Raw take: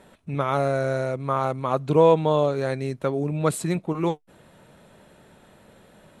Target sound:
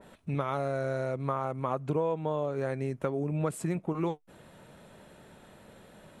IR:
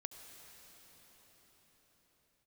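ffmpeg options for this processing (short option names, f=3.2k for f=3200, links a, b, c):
-filter_complex "[0:a]asettb=1/sr,asplit=3[a][b][c];[a]atrim=end=1.344[d];[b]atrim=start=1.34:end=3.94,asetpts=PTS-STARTPTS,afade=t=in:d=0.004:c=qsin,afade=t=out:st=2.596:d=0.004:c=qsin,equalizer=f=4k:t=o:w=0.35:g=-8.5[e];[c]atrim=start=3.936[f];[d][e]acrossfade=d=0.004:c1=hsin:c2=qsin[g];[g][f]acrossfade=d=0.004:c1=qsin:c2=hsin,acompressor=threshold=-26dB:ratio=5,adynamicequalizer=threshold=0.00355:dfrequency=2400:dqfactor=0.7:tfrequency=2400:tqfactor=0.7:attack=5:release=100:ratio=0.375:range=2:mode=cutabove:tftype=highshelf,volume=-1dB"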